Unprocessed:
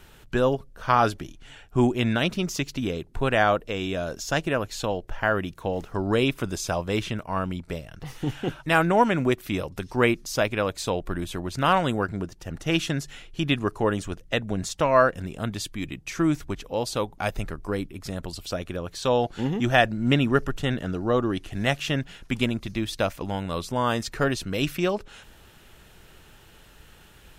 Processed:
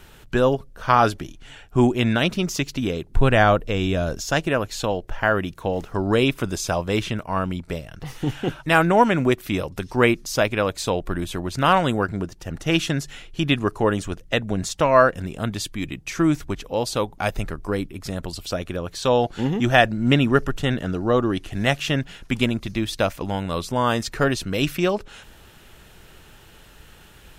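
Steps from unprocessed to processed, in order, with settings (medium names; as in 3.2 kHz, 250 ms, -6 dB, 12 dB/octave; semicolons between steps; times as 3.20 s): 3.10–4.21 s: bass shelf 150 Hz +11 dB; trim +3.5 dB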